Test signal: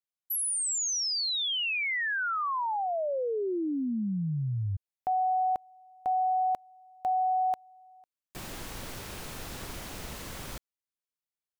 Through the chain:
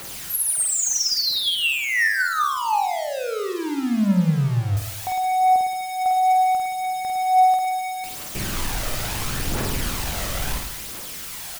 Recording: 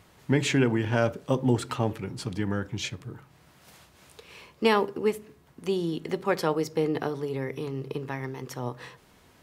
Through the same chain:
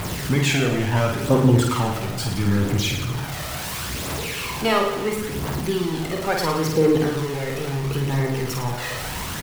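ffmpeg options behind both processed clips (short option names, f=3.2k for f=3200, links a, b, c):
-af "aeval=exprs='val(0)+0.5*0.0422*sgn(val(0))':c=same,aphaser=in_gain=1:out_gain=1:delay=1.7:decay=0.54:speed=0.73:type=triangular,aecho=1:1:50|107.5|173.6|249.7|337.1:0.631|0.398|0.251|0.158|0.1"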